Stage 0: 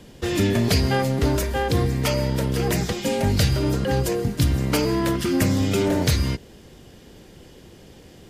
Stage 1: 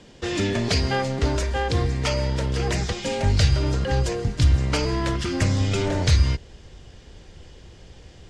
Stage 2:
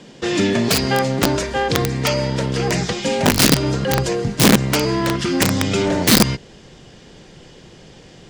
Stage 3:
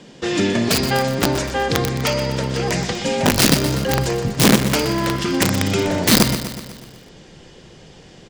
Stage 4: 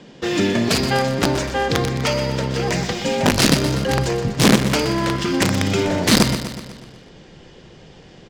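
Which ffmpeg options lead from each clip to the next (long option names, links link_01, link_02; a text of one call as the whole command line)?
ffmpeg -i in.wav -af "asubboost=boost=5.5:cutoff=96,lowpass=frequency=7600:width=0.5412,lowpass=frequency=7600:width=1.3066,lowshelf=frequency=320:gain=-5.5" out.wav
ffmpeg -i in.wav -af "acontrast=51,aeval=exprs='(mod(2.37*val(0)+1,2)-1)/2.37':channel_layout=same,lowshelf=frequency=110:width_type=q:width=1.5:gain=-11.5" out.wav
ffmpeg -i in.wav -af "aecho=1:1:123|246|369|492|615|738|861:0.299|0.173|0.1|0.0582|0.0338|0.0196|0.0114,volume=-1dB" out.wav
ffmpeg -i in.wav -af "adynamicsmooth=sensitivity=6.5:basefreq=6200" out.wav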